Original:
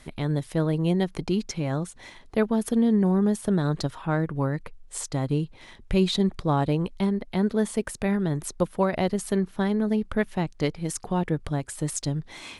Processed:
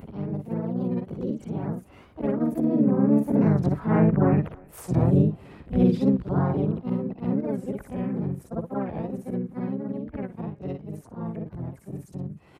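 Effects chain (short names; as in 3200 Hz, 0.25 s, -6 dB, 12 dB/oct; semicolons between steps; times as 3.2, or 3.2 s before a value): short-time reversal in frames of 0.125 s; Doppler pass-by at 4.52, 15 m/s, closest 12 m; tilt -2.5 dB/oct; in parallel at -1 dB: compressor 12:1, threshold -41 dBFS, peak gain reduction 23 dB; on the sum: thinning echo 0.308 s, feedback 39%, high-pass 370 Hz, level -24 dB; upward compressor, threshold -42 dBFS; HPF 51 Hz 24 dB/oct; bell 4600 Hz -14 dB 1.7 oct; harmoniser -7 st -10 dB, +5 st -2 dB; record warp 45 rpm, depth 160 cents; gain +3 dB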